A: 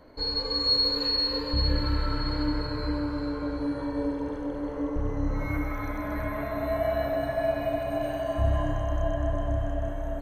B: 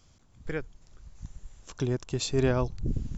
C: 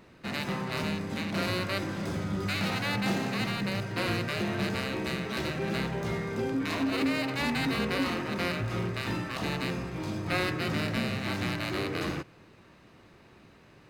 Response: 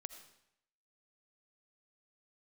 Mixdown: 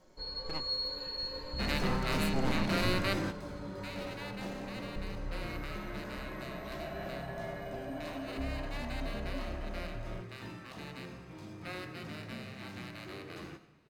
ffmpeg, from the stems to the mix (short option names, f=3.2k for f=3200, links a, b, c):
-filter_complex "[0:a]aecho=1:1:5.4:0.66,volume=-12dB[a];[1:a]aeval=exprs='abs(val(0))':c=same,volume=-7dB,asplit=2[b][c];[2:a]adelay=1350,volume=-2.5dB,asplit=2[d][e];[e]volume=-8.5dB[f];[c]apad=whole_len=672247[g];[d][g]sidechaingate=range=-23dB:threshold=-59dB:ratio=16:detection=peak[h];[3:a]atrim=start_sample=2205[i];[f][i]afir=irnorm=-1:irlink=0[j];[a][b][h][j]amix=inputs=4:normalize=0"